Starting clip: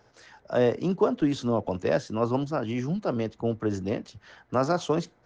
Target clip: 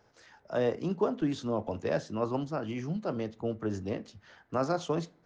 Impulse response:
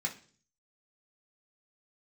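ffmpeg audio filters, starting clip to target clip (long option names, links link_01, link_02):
-filter_complex "[0:a]asplit=2[link_01][link_02];[1:a]atrim=start_sample=2205,lowpass=3800,adelay=16[link_03];[link_02][link_03]afir=irnorm=-1:irlink=0,volume=-15dB[link_04];[link_01][link_04]amix=inputs=2:normalize=0,volume=-5.5dB"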